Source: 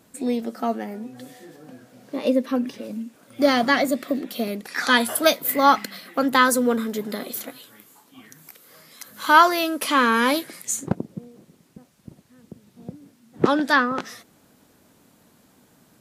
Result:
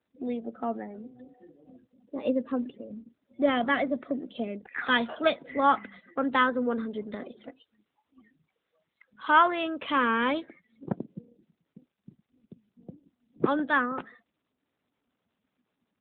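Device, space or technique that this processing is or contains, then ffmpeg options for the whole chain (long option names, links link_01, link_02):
mobile call with aggressive noise cancelling: -af "highpass=130,afftdn=noise_reduction=26:noise_floor=-39,volume=-6dB" -ar 8000 -c:a libopencore_amrnb -b:a 12200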